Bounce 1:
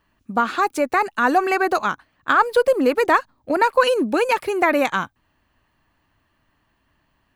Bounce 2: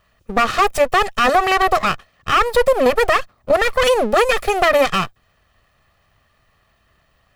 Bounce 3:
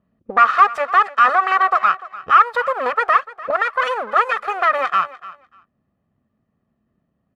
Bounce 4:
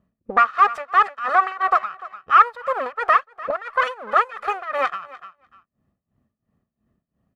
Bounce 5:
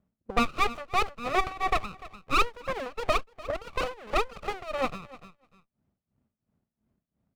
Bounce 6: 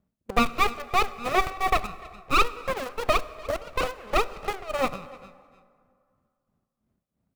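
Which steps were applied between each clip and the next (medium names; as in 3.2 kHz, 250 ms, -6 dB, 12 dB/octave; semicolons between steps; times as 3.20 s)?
comb filter that takes the minimum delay 1.6 ms; peak limiter -13.5 dBFS, peak gain reduction 9 dB; trim +7.5 dB
gain riding within 5 dB 2 s; auto-wah 220–1300 Hz, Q 2.9, up, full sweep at -18 dBFS; feedback delay 296 ms, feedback 17%, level -18 dB; trim +5.5 dB
bass shelf 93 Hz +6 dB; tremolo 2.9 Hz, depth 89%
sliding maximum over 17 samples; trim -6 dB
in parallel at -8 dB: bit crusher 5-bit; on the sum: plate-style reverb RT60 2.3 s, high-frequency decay 0.6×, DRR 15.5 dB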